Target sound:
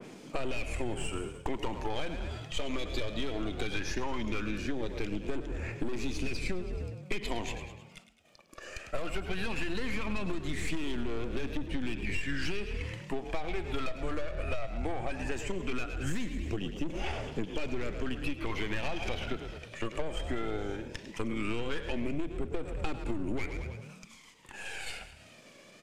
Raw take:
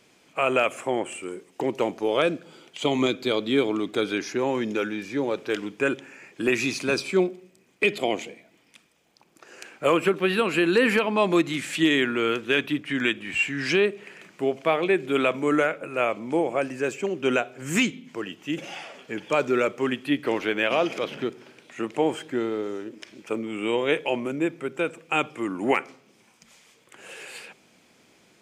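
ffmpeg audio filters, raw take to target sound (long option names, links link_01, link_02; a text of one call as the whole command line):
ffmpeg -i in.wav -filter_complex "[0:a]acrossover=split=130|3800[link_01][link_02][link_03];[link_01]acrusher=bits=3:mix=0:aa=0.000001[link_04];[link_02]aphaser=in_gain=1:out_gain=1:delay=1.8:decay=0.65:speed=0.16:type=triangular[link_05];[link_04][link_05][link_03]amix=inputs=3:normalize=0,crystalizer=i=2:c=0,aeval=exprs='(tanh(15.8*val(0)+0.5)-tanh(0.5))/15.8':channel_layout=same,acompressor=mode=upward:threshold=-39dB:ratio=2.5,aemphasis=mode=reproduction:type=bsi,agate=range=-33dB:threshold=-46dB:ratio=3:detection=peak,asplit=7[link_06][link_07][link_08][link_09][link_10][link_11][link_12];[link_07]adelay=115,afreqshift=37,volume=-12dB[link_13];[link_08]adelay=230,afreqshift=74,volume=-17.4dB[link_14];[link_09]adelay=345,afreqshift=111,volume=-22.7dB[link_15];[link_10]adelay=460,afreqshift=148,volume=-28.1dB[link_16];[link_11]adelay=575,afreqshift=185,volume=-33.4dB[link_17];[link_12]adelay=690,afreqshift=222,volume=-38.8dB[link_18];[link_06][link_13][link_14][link_15][link_16][link_17][link_18]amix=inputs=7:normalize=0,acompressor=threshold=-26dB:ratio=10,atempo=1.1,adynamicequalizer=threshold=0.00224:dfrequency=1800:dqfactor=0.7:tfrequency=1800:tqfactor=0.7:attack=5:release=100:ratio=0.375:range=1.5:mode=boostabove:tftype=highshelf,volume=-1.5dB" out.wav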